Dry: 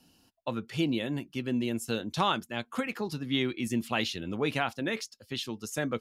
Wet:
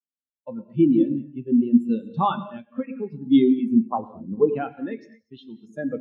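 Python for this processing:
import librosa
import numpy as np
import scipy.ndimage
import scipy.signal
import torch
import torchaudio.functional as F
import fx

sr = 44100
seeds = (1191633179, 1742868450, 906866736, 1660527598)

y = fx.high_shelf_res(x, sr, hz=1500.0, db=-12.5, q=3.0, at=(3.71, 4.49))
y = fx.echo_feedback(y, sr, ms=113, feedback_pct=38, wet_db=-14.0)
y = fx.rev_gated(y, sr, seeds[0], gate_ms=270, shape='flat', drr_db=4.0)
y = fx.spectral_expand(y, sr, expansion=2.5)
y = F.gain(torch.from_numpy(y), 7.0).numpy()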